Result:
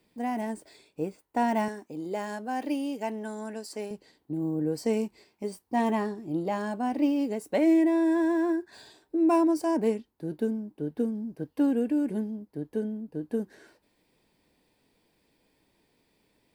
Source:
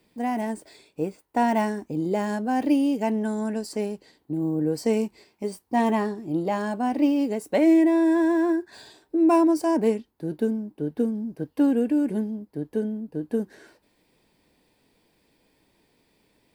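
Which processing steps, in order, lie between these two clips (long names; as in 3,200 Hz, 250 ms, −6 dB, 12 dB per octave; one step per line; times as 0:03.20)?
0:01.68–0:03.91: high-pass filter 460 Hz 6 dB per octave
level −4 dB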